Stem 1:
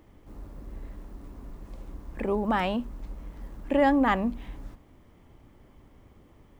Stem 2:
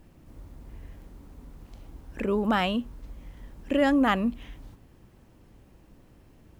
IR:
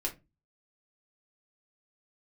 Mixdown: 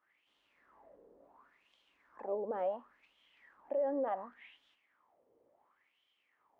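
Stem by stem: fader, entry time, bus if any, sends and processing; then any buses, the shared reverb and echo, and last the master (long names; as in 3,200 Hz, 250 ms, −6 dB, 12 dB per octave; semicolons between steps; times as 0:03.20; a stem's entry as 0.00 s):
+3.0 dB, 0.00 s, no send, downward expander −52 dBFS
−2.5 dB, 0.00 s, no send, hum removal 75.56 Hz, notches 28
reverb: not used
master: low-shelf EQ 270 Hz −10.5 dB; LFO wah 0.7 Hz 470–3,200 Hz, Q 7; brickwall limiter −27 dBFS, peak gain reduction 11.5 dB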